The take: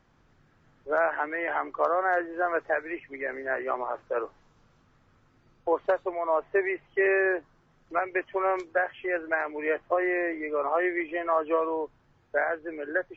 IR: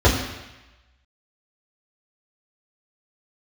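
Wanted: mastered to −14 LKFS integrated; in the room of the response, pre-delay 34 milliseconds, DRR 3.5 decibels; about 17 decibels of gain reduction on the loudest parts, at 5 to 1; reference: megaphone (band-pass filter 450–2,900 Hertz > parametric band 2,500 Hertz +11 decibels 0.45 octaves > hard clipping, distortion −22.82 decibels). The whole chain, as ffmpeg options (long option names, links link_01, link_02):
-filter_complex "[0:a]acompressor=threshold=-40dB:ratio=5,asplit=2[link_01][link_02];[1:a]atrim=start_sample=2205,adelay=34[link_03];[link_02][link_03]afir=irnorm=-1:irlink=0,volume=-25.5dB[link_04];[link_01][link_04]amix=inputs=2:normalize=0,highpass=450,lowpass=2900,equalizer=frequency=2500:width_type=o:width=0.45:gain=11,asoftclip=type=hard:threshold=-32dB,volume=27dB"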